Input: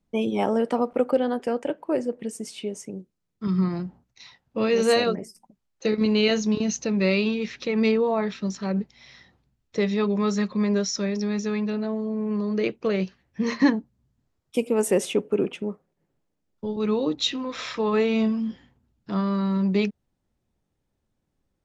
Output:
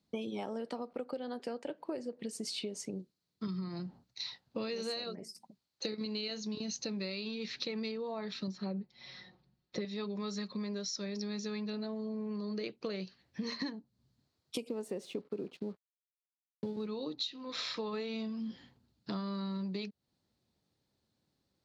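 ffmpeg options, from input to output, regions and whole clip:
-filter_complex "[0:a]asettb=1/sr,asplit=3[a][b][c];[a]atrim=end=8.474[d];[b]atrim=start=8.47:end=9.85,asetpts=PTS-STARTPTS,afade=t=in:d=0.004:c=qsin,afade=t=out:st=1.376:d=0.004:c=qsin,lowpass=f=1.7k:p=1,aecho=1:1:5.5:0.83,atrim=end_sample=60858[e];[c]atrim=start=9.846[f];[d][e]acrossfade=d=0.004:c1=hsin:c2=qsin[g];[g][f]acrossfade=d=0.004:c1=qsin:c2=hsin,asettb=1/sr,asplit=3[h][i][j];[h]atrim=end=14.694[k];[i]atrim=start=14.69:end=16.87,asetpts=PTS-STARTPTS,afade=t=in:d=0.004:c=qsin,afade=t=out:st=2.176:d=0.004:c=qsin,tiltshelf=f=1.1k:g=5,aeval=exprs='sgn(val(0))*max(abs(val(0))-0.00355,0)':c=same[l];[j]atrim=start=16.866[m];[k][l]acrossfade=d=0.004:c1=hsin:c2=qsin[n];[n][m]acrossfade=d=0.004:c1=qsin:c2=hsin,equalizer=f=4.3k:t=o:w=0.53:g=14,acompressor=threshold=-33dB:ratio=16,highpass=91,volume=-2dB"

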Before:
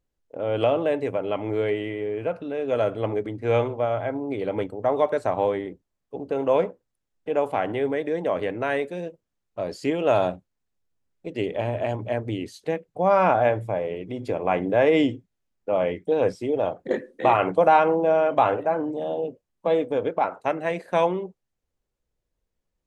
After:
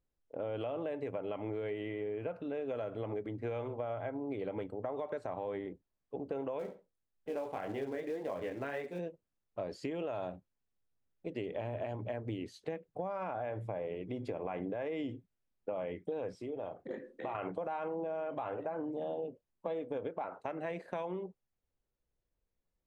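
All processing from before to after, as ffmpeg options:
-filter_complex "[0:a]asettb=1/sr,asplit=3[a][b][c];[a]atrim=end=6.594[d];[b]atrim=start=6.59:end=8.99,asetpts=PTS-STARTPTS,afade=t=in:d=0.004:c=qsin,afade=t=out:st=2.396:d=0.004:c=qsin,flanger=delay=19.5:depth=5:speed=1.8,acrusher=bits=5:mode=log:mix=0:aa=0.000001,asplit=2[e][f];[f]adelay=69,lowpass=f=4.3k:p=1,volume=-15dB,asplit=2[g][h];[h]adelay=69,lowpass=f=4.3k:p=1,volume=0.21[i];[e][g][i]amix=inputs=3:normalize=0,atrim=end_sample=105840[j];[c]atrim=start=8.986[k];[d][j]acrossfade=d=0.004:c1=hsin:c2=qsin[l];[l][k]acrossfade=d=0.004:c1=qsin:c2=hsin,asettb=1/sr,asplit=3[m][n][o];[m]atrim=end=16.364[p];[n]atrim=start=16.36:end=17.35,asetpts=PTS-STARTPTS,afade=t=in:d=0.004:c=qsin,afade=t=out:st=0.986:d=0.004:c=qsin,acompressor=threshold=-38dB:ratio=2:attack=3.2:release=140:knee=1:detection=peak,asplit=2[q][r];[r]adelay=36,volume=-13.5dB[s];[q][s]amix=inputs=2:normalize=0,atrim=end_sample=43659[t];[o]atrim=start=17.346[u];[p][t]acrossfade=d=0.004:c1=hsin:c2=qsin[v];[v][u]acrossfade=d=0.004:c1=qsin:c2=hsin,lowpass=f=3.4k:p=1,alimiter=limit=-17.5dB:level=0:latency=1:release=80,acompressor=threshold=-29dB:ratio=6,volume=-5.5dB"

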